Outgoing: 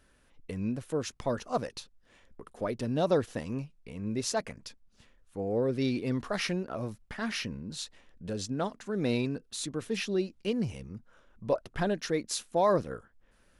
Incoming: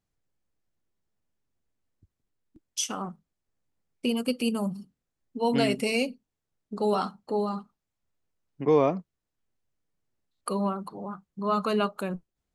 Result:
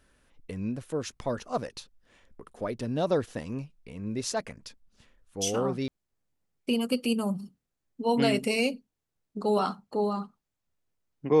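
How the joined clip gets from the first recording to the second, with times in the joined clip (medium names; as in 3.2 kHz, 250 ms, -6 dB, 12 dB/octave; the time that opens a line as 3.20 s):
outgoing
5.63 s: go over to incoming from 2.99 s, crossfade 0.50 s logarithmic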